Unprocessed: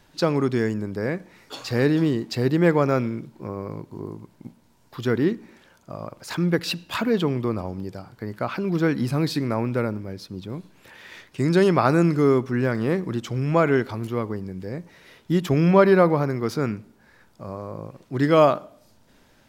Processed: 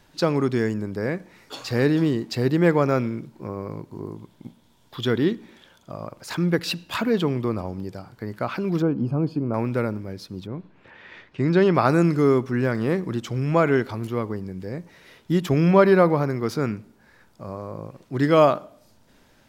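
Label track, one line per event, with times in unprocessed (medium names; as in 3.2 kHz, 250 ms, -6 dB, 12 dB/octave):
4.160000	5.920000	peaking EQ 3.4 kHz +12 dB 0.27 oct
8.820000	9.540000	boxcar filter over 23 samples
10.460000	11.730000	low-pass 2 kHz -> 3.9 kHz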